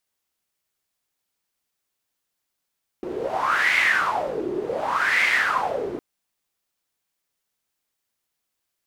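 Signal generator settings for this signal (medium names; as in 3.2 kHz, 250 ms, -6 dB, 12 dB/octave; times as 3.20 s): wind-like swept noise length 2.96 s, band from 360 Hz, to 2.1 kHz, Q 7.4, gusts 2, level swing 9 dB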